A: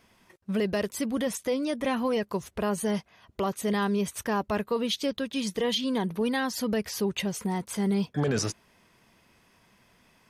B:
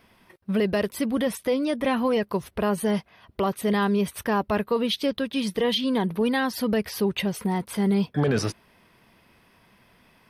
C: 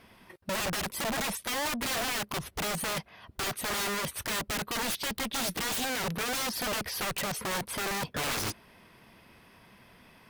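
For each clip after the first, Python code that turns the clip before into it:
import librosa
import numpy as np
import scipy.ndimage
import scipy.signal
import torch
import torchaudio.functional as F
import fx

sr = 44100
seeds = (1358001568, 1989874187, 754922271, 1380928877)

y1 = fx.peak_eq(x, sr, hz=6900.0, db=-13.5, octaves=0.51)
y1 = y1 * librosa.db_to_amplitude(4.0)
y2 = (np.mod(10.0 ** (24.5 / 20.0) * y1 + 1.0, 2.0) - 1.0) / 10.0 ** (24.5 / 20.0)
y2 = fx.cheby_harmonics(y2, sr, harmonics=(5,), levels_db=(-19,), full_scale_db=-24.5)
y2 = y2 * librosa.db_to_amplitude(-2.0)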